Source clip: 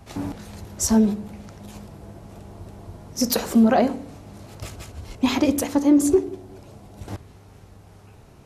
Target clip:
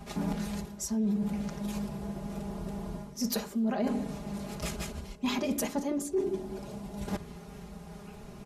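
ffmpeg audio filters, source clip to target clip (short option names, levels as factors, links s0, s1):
-af "equalizer=f=180:w=3.5:g=6,aecho=1:1:4.9:0.85,areverse,acompressor=threshold=0.0398:ratio=8,areverse"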